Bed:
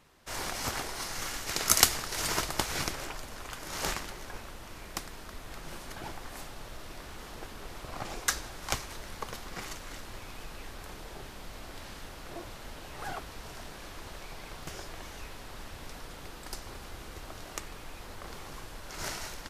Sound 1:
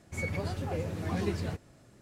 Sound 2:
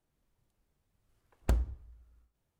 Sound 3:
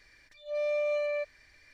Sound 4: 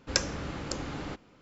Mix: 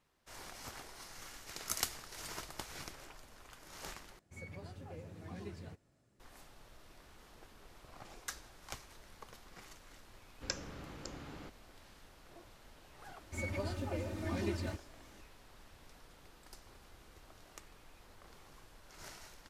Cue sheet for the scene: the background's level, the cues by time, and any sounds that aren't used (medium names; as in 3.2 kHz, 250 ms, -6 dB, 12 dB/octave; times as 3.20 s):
bed -14.5 dB
4.19 s: replace with 1 -15 dB
10.34 s: add 4 -12 dB
13.20 s: add 1 -6 dB + comb 3.3 ms, depth 90%
not used: 2, 3